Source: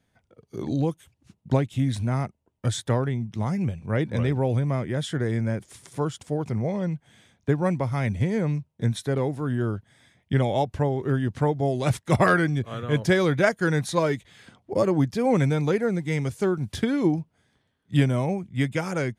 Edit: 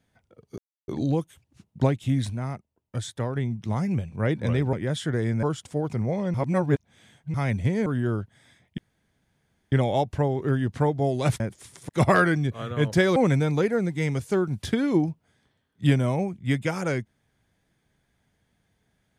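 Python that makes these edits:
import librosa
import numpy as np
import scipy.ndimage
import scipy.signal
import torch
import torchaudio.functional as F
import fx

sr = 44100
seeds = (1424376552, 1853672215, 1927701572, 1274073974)

y = fx.edit(x, sr, fx.insert_silence(at_s=0.58, length_s=0.3),
    fx.clip_gain(start_s=2.0, length_s=1.06, db=-5.5),
    fx.cut(start_s=4.43, length_s=0.37),
    fx.move(start_s=5.5, length_s=0.49, to_s=12.01),
    fx.reverse_span(start_s=6.9, length_s=1.0),
    fx.cut(start_s=8.42, length_s=0.99),
    fx.insert_room_tone(at_s=10.33, length_s=0.94),
    fx.cut(start_s=13.28, length_s=1.98), tone=tone)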